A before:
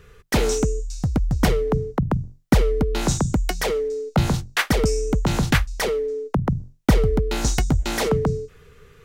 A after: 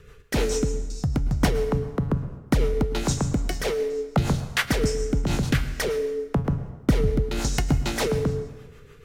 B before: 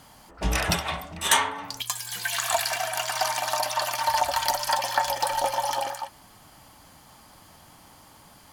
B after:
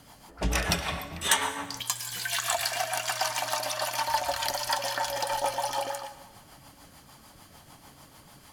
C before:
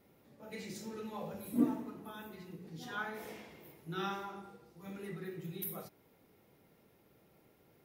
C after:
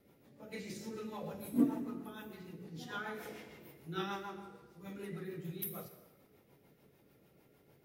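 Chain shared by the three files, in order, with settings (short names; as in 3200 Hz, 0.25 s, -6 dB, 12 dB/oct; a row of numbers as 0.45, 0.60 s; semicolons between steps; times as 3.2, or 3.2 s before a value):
in parallel at -0.5 dB: compressor, threshold -26 dBFS; on the sum: resonator 140 Hz, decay 0.67 s, harmonics all, mix 60%; rotary speaker horn 6.7 Hz; plate-style reverb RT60 1.2 s, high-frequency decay 0.75×, pre-delay 95 ms, DRR 12.5 dB; gain +3 dB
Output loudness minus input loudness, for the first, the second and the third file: -3.0, -3.0, 0.0 LU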